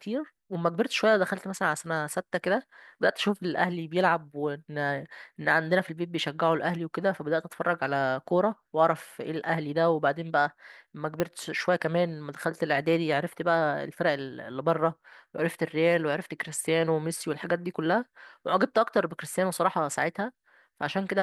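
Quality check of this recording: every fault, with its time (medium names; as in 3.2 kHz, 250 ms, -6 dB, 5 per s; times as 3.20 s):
11.20 s: pop -12 dBFS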